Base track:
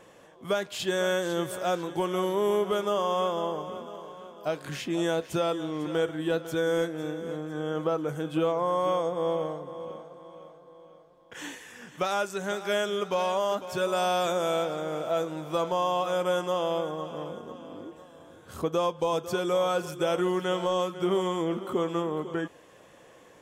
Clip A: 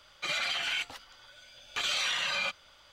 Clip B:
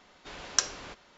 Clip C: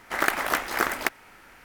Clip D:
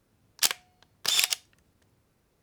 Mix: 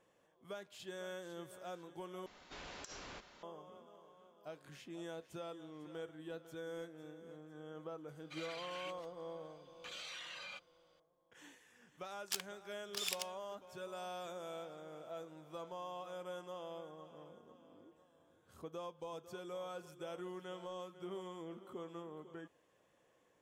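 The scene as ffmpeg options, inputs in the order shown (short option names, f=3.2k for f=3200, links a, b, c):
-filter_complex "[0:a]volume=-19.5dB[a];[2:a]acompressor=threshold=-42dB:ratio=12:attack=0.71:release=76:knee=6:detection=peak[b];[a]asplit=2[c][d];[c]atrim=end=2.264[e];[b]atrim=end=1.17,asetpts=PTS-STARTPTS,volume=-2dB[f];[d]atrim=start=3.426[g];[1:a]atrim=end=2.92,asetpts=PTS-STARTPTS,volume=-18dB,afade=t=in:d=0.004:c=hsin,afade=t=out:st=2.916:d=0.004:c=hsin,adelay=8080[h];[4:a]atrim=end=2.42,asetpts=PTS-STARTPTS,volume=-16dB,afade=t=in:d=0.004:c=hsin,afade=t=out:st=2.416:d=0.004:c=hsin,adelay=11890[i];[e][f]acrossfade=d=0.004:c1=hsin:c2=hsin[j];[j][g]acrossfade=d=0.004:c1=hsin:c2=hsin[k];[k][h][i]amix=inputs=3:normalize=0"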